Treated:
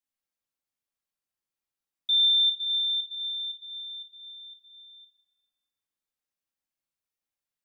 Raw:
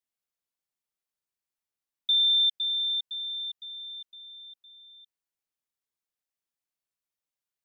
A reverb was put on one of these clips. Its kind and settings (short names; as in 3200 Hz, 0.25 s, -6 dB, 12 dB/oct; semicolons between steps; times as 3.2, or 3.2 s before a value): shoebox room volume 2900 m³, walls mixed, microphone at 2.2 m; gain -3.5 dB